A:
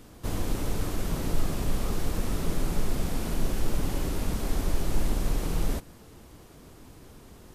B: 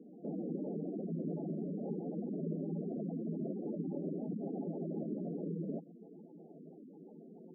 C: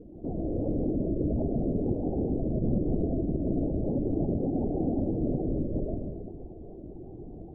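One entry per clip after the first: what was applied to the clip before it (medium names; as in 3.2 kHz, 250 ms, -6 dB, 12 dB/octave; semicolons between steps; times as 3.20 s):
Chebyshev band-pass 160–870 Hz, order 5; spectral gate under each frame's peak -10 dB strong; in parallel at -2.5 dB: compression, threshold -45 dBFS, peak gain reduction 13 dB; on the sum: trim -3.5 dB
reverberation RT60 1.5 s, pre-delay 75 ms, DRR 0.5 dB; LPC vocoder at 8 kHz whisper; trim +7 dB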